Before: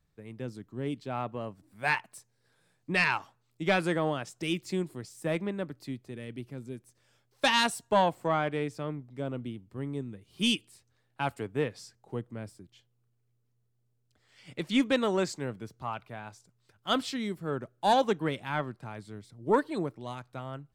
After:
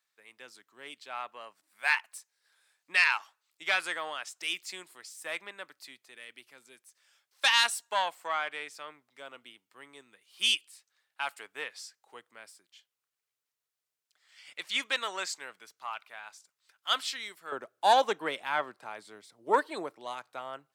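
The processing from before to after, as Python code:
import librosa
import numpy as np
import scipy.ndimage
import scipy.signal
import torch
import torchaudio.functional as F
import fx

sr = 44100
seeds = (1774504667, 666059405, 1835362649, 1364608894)

y = fx.highpass(x, sr, hz=fx.steps((0.0, 1300.0), (17.52, 610.0)), slope=12)
y = F.gain(torch.from_numpy(y), 3.5).numpy()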